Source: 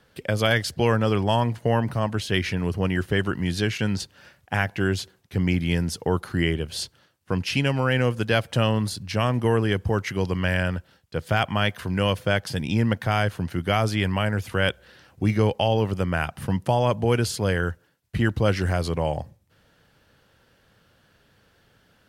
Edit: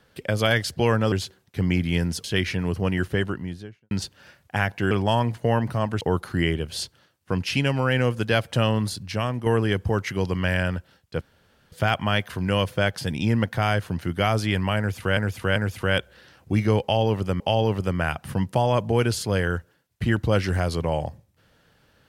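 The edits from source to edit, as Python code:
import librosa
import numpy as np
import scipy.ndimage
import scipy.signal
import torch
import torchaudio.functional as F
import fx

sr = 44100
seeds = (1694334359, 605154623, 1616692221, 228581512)

y = fx.studio_fade_out(x, sr, start_s=3.0, length_s=0.89)
y = fx.edit(y, sr, fx.swap(start_s=1.12, length_s=1.1, other_s=4.89, other_length_s=1.12),
    fx.fade_out_to(start_s=8.95, length_s=0.51, floor_db=-6.5),
    fx.insert_room_tone(at_s=11.21, length_s=0.51),
    fx.repeat(start_s=14.27, length_s=0.39, count=3),
    fx.repeat(start_s=15.53, length_s=0.58, count=2), tone=tone)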